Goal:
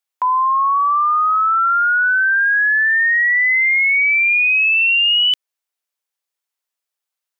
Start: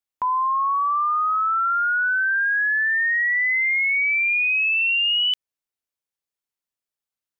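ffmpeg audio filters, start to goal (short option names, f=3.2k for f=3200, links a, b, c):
-af "highpass=530,volume=6dB"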